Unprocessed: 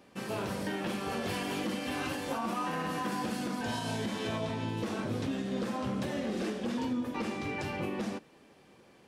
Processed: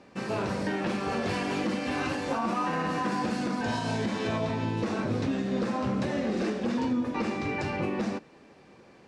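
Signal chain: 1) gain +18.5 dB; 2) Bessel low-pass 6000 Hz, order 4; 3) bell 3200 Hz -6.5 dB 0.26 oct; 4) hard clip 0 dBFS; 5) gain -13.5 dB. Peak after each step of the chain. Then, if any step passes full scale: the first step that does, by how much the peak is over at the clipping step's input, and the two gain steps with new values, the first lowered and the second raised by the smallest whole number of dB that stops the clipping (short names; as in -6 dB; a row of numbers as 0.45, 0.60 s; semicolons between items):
-6.0, -6.5, -6.0, -6.0, -19.5 dBFS; no overload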